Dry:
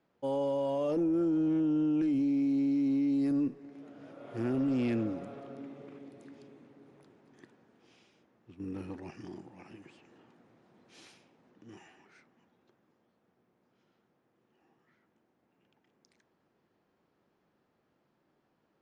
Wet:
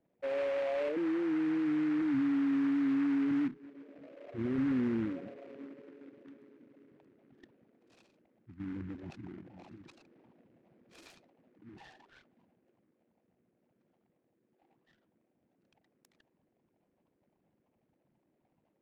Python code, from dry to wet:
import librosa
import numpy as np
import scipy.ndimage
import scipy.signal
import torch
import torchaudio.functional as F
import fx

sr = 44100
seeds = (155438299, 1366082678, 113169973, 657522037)

y = fx.envelope_sharpen(x, sr, power=3.0)
y = y + 0.55 * np.pad(y, (int(1.2 * sr / 1000.0), 0))[:len(y)]
y = fx.noise_mod_delay(y, sr, seeds[0], noise_hz=1400.0, depth_ms=0.064)